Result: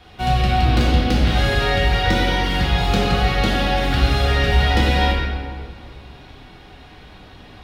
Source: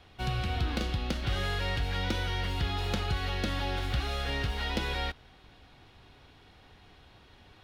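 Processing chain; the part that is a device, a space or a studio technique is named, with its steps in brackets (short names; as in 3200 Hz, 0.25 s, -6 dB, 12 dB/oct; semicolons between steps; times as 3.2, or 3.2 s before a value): stairwell (reverb RT60 2.0 s, pre-delay 3 ms, DRR -5.5 dB); gain +7 dB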